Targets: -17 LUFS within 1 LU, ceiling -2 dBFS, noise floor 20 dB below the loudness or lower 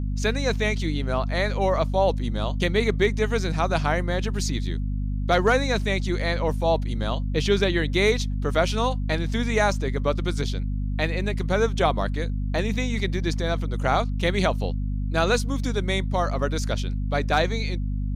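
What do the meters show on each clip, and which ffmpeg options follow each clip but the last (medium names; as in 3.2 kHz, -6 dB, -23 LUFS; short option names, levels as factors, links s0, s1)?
hum 50 Hz; highest harmonic 250 Hz; hum level -24 dBFS; loudness -24.5 LUFS; peak level -8.0 dBFS; loudness target -17.0 LUFS
-> -af "bandreject=f=50:t=h:w=6,bandreject=f=100:t=h:w=6,bandreject=f=150:t=h:w=6,bandreject=f=200:t=h:w=6,bandreject=f=250:t=h:w=6"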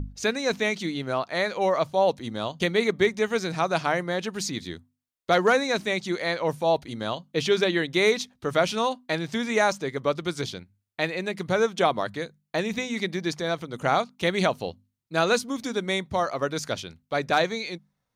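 hum not found; loudness -26.0 LUFS; peak level -9.5 dBFS; loudness target -17.0 LUFS
-> -af "volume=2.82,alimiter=limit=0.794:level=0:latency=1"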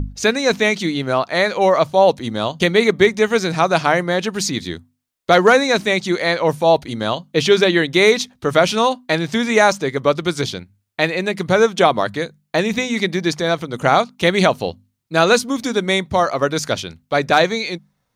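loudness -17.0 LUFS; peak level -2.0 dBFS; noise floor -70 dBFS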